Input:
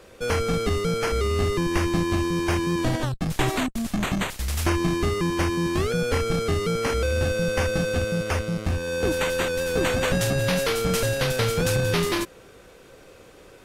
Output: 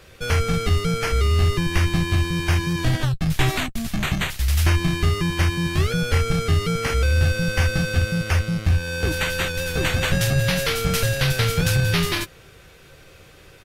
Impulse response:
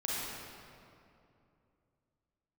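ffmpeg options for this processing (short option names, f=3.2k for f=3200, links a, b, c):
-filter_complex "[0:a]equalizer=f=125:t=o:w=1:g=4,equalizer=f=250:t=o:w=1:g=-9,equalizer=f=500:t=o:w=1:g=-7,equalizer=f=1k:t=o:w=1:g=-6,equalizer=f=8k:t=o:w=1:g=-5,acontrast=38,asplit=2[a][b];[b]adelay=13,volume=-10.5dB[c];[a][c]amix=inputs=2:normalize=0"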